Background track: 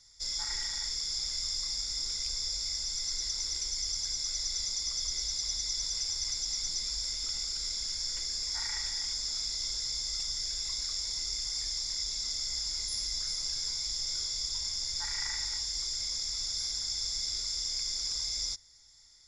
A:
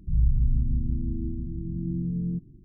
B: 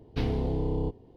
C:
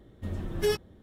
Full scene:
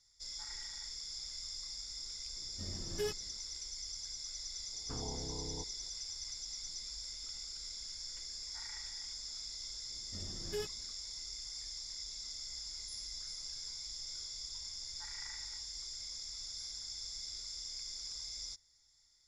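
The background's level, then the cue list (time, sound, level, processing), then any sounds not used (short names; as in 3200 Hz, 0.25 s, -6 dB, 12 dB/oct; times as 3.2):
background track -10.5 dB
2.36 add C -11 dB
4.73 add B -16 dB + stepped low-pass 7.1 Hz 770–1800 Hz
9.9 add C -13.5 dB
not used: A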